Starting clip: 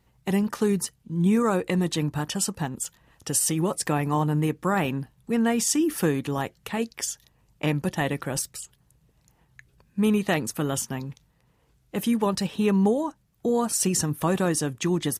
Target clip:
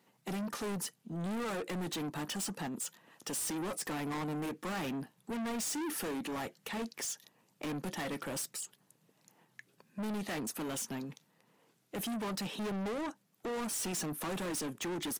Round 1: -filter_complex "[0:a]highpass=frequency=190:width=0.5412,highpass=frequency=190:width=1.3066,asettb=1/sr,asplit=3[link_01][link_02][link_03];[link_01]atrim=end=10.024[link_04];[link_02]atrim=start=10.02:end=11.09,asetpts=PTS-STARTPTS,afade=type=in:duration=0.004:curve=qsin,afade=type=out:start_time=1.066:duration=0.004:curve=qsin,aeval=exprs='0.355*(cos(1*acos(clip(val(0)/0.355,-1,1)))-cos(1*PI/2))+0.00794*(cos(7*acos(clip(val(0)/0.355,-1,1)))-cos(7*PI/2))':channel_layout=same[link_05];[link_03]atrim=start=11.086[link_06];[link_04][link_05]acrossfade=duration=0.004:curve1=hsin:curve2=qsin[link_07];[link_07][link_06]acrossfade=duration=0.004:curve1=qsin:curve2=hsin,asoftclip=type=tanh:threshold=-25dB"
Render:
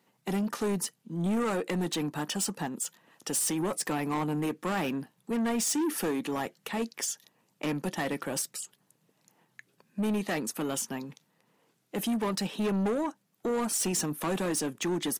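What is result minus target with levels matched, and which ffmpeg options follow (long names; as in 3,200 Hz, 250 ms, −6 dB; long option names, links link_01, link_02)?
soft clipping: distortion −6 dB
-filter_complex "[0:a]highpass=frequency=190:width=0.5412,highpass=frequency=190:width=1.3066,asettb=1/sr,asplit=3[link_01][link_02][link_03];[link_01]atrim=end=10.024[link_04];[link_02]atrim=start=10.02:end=11.09,asetpts=PTS-STARTPTS,afade=type=in:duration=0.004:curve=qsin,afade=type=out:start_time=1.066:duration=0.004:curve=qsin,aeval=exprs='0.355*(cos(1*acos(clip(val(0)/0.355,-1,1)))-cos(1*PI/2))+0.00794*(cos(7*acos(clip(val(0)/0.355,-1,1)))-cos(7*PI/2))':channel_layout=same[link_05];[link_03]atrim=start=11.086[link_06];[link_04][link_05]acrossfade=duration=0.004:curve1=hsin:curve2=qsin[link_07];[link_07][link_06]acrossfade=duration=0.004:curve1=qsin:curve2=hsin,asoftclip=type=tanh:threshold=-35dB"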